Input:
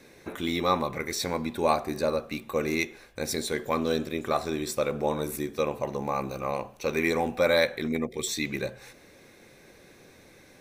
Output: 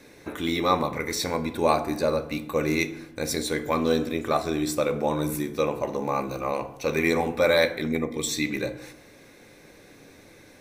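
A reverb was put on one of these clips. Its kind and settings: FDN reverb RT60 0.83 s, low-frequency decay 1.35×, high-frequency decay 0.5×, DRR 9 dB; trim +2 dB

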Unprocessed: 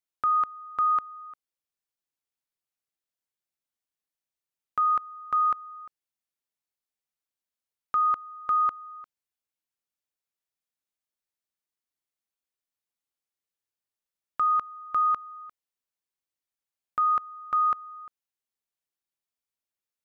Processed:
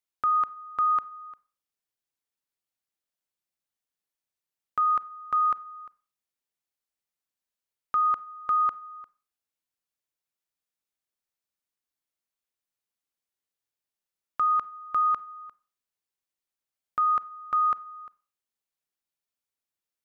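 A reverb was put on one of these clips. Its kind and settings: Schroeder reverb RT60 0.41 s, combs from 31 ms, DRR 19.5 dB

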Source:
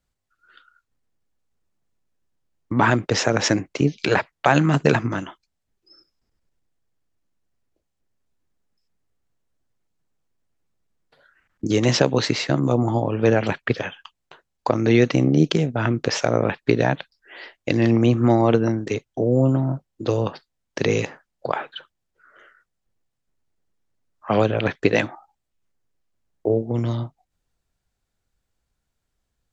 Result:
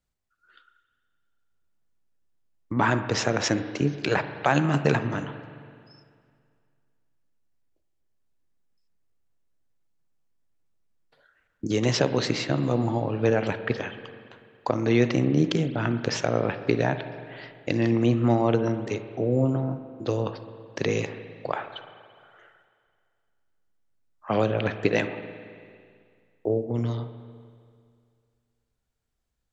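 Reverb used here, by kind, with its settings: spring tank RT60 2.2 s, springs 42/55 ms, chirp 25 ms, DRR 10 dB; trim -5 dB

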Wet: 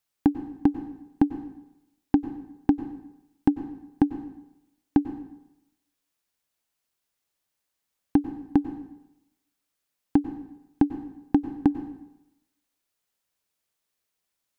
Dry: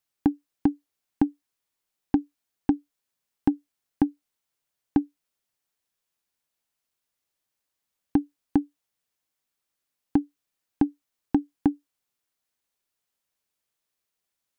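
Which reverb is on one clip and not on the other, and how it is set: plate-style reverb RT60 0.88 s, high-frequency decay 0.8×, pre-delay 85 ms, DRR 11 dB; trim +1.5 dB

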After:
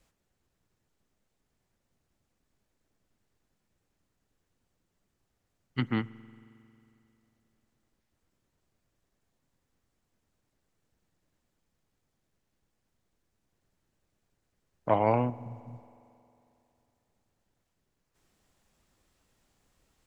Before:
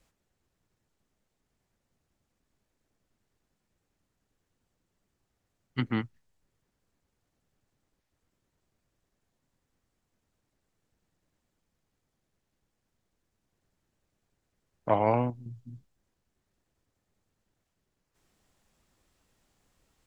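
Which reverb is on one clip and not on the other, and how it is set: spring tank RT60 2.9 s, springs 45 ms, chirp 70 ms, DRR 19.5 dB

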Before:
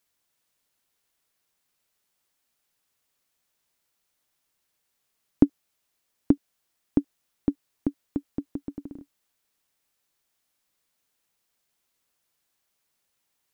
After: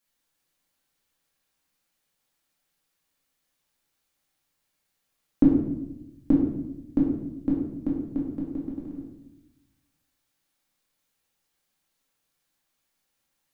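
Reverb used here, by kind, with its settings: simulated room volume 320 m³, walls mixed, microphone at 2.2 m; trim -6 dB

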